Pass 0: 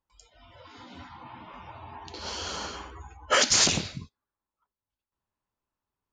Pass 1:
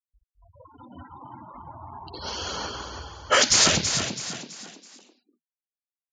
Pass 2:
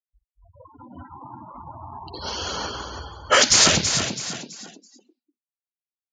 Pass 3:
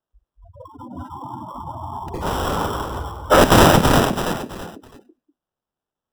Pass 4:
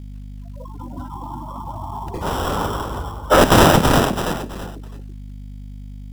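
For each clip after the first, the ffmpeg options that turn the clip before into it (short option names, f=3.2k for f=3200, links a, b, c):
-filter_complex "[0:a]afftfilt=real='re*gte(hypot(re,im),0.0126)':imag='im*gte(hypot(re,im),0.0126)':win_size=1024:overlap=0.75,asplit=2[a][b];[b]asplit=4[c][d][e][f];[c]adelay=329,afreqshift=39,volume=-7.5dB[g];[d]adelay=658,afreqshift=78,volume=-15.7dB[h];[e]adelay=987,afreqshift=117,volume=-23.9dB[i];[f]adelay=1316,afreqshift=156,volume=-32dB[j];[g][h][i][j]amix=inputs=4:normalize=0[k];[a][k]amix=inputs=2:normalize=0,volume=3dB"
-af "afftdn=nr=26:nf=-47,volume=3dB"
-filter_complex "[0:a]acrossover=split=380|1600[a][b][c];[c]acrusher=samples=20:mix=1:aa=0.000001[d];[a][b][d]amix=inputs=3:normalize=0,alimiter=level_in=9dB:limit=-1dB:release=50:level=0:latency=1,volume=-1dB"
-af "aeval=exprs='val(0)+0.0224*(sin(2*PI*50*n/s)+sin(2*PI*2*50*n/s)/2+sin(2*PI*3*50*n/s)/3+sin(2*PI*4*50*n/s)/4+sin(2*PI*5*50*n/s)/5)':c=same,acrusher=bits=7:mode=log:mix=0:aa=0.000001"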